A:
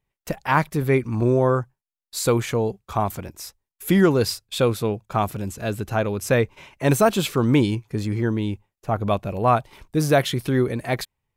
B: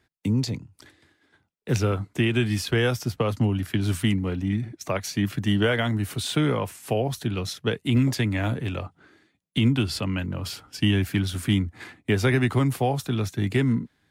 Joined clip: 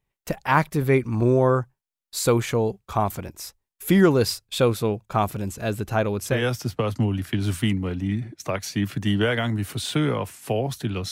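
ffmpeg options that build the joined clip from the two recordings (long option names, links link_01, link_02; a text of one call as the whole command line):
ffmpeg -i cue0.wav -i cue1.wav -filter_complex "[0:a]apad=whole_dur=11.11,atrim=end=11.11,atrim=end=6.47,asetpts=PTS-STARTPTS[link_01];[1:a]atrim=start=2.6:end=7.52,asetpts=PTS-STARTPTS[link_02];[link_01][link_02]acrossfade=duration=0.28:curve1=tri:curve2=tri" out.wav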